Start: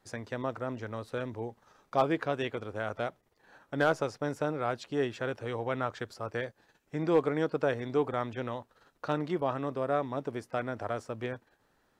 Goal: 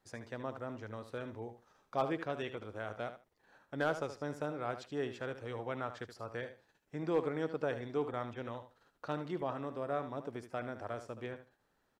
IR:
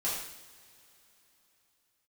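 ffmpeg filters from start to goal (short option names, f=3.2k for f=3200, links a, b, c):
-af "aecho=1:1:75|150:0.282|0.0507,volume=-7dB"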